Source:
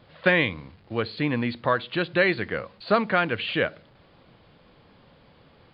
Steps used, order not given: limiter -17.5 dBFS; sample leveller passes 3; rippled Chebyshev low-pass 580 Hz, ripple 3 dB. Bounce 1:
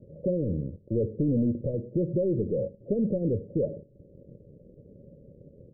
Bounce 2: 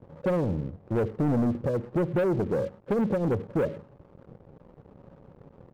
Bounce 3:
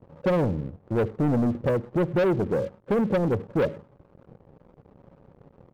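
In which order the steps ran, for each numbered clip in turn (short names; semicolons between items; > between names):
limiter > sample leveller > rippled Chebyshev low-pass; limiter > rippled Chebyshev low-pass > sample leveller; rippled Chebyshev low-pass > limiter > sample leveller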